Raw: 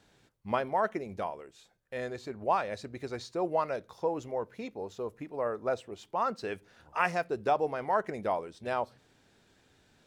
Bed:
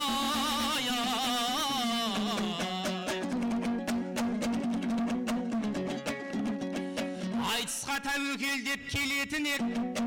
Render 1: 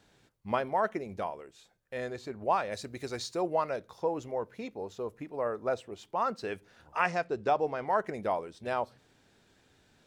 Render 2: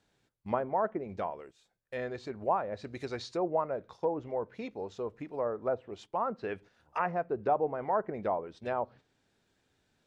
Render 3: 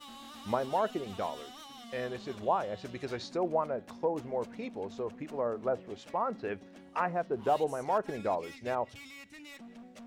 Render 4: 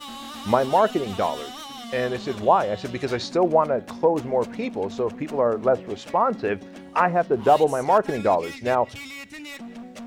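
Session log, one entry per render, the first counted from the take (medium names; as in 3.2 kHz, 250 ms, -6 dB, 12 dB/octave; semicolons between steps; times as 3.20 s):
2.71–3.41 s: treble shelf 5 kHz -> 3.1 kHz +10.5 dB; 7.00–7.89 s: low-pass 7.9 kHz 24 dB/octave
gate -51 dBFS, range -9 dB; low-pass that closes with the level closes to 1.1 kHz, closed at -28 dBFS
add bed -18.5 dB
trim +11.5 dB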